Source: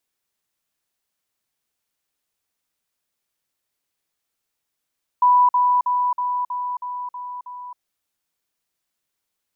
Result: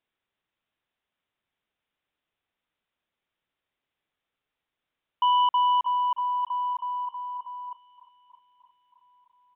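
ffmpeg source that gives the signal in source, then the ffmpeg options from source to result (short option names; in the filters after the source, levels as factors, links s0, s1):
-f lavfi -i "aevalsrc='pow(10,(-11-3*floor(t/0.32))/20)*sin(2*PI*988*t)*clip(min(mod(t,0.32),0.27-mod(t,0.32))/0.005,0,1)':d=2.56:s=44100"
-af "aresample=8000,asoftclip=type=tanh:threshold=0.112,aresample=44100,aecho=1:1:623|1246|1869|2492|3115:0.15|0.0793|0.042|0.0223|0.0118"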